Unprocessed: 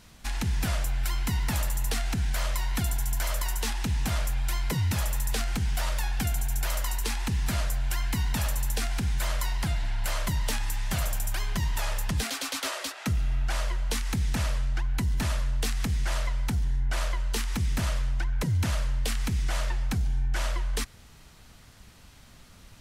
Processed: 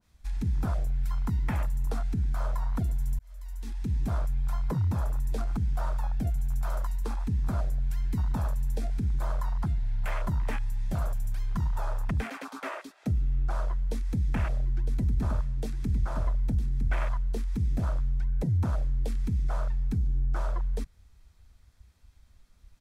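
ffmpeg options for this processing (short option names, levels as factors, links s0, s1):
-filter_complex "[0:a]asplit=3[s0][s1][s2];[s0]afade=t=out:st=14.35:d=0.02[s3];[s1]aecho=1:1:958:0.422,afade=t=in:st=14.35:d=0.02,afade=t=out:st=17.17:d=0.02[s4];[s2]afade=t=in:st=17.17:d=0.02[s5];[s3][s4][s5]amix=inputs=3:normalize=0,asplit=2[s6][s7];[s6]atrim=end=3.19,asetpts=PTS-STARTPTS,afade=t=out:st=3.186:d=0.004:c=hsin[s8];[s7]atrim=start=3.19,asetpts=PTS-STARTPTS,afade=t=in:d=0.79[s9];[s8][s9]concat=n=2:v=0:a=1,afwtdn=0.02,bandreject=f=2900:w=13,adynamicequalizer=threshold=0.00282:dfrequency=1800:dqfactor=0.7:tfrequency=1800:tqfactor=0.7:attack=5:release=100:ratio=0.375:range=2:mode=cutabove:tftype=highshelf"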